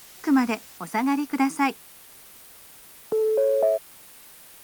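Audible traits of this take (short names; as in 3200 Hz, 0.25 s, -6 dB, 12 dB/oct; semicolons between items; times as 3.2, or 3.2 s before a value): tremolo triangle 0.89 Hz, depth 65%; a quantiser's noise floor 8-bit, dither triangular; Opus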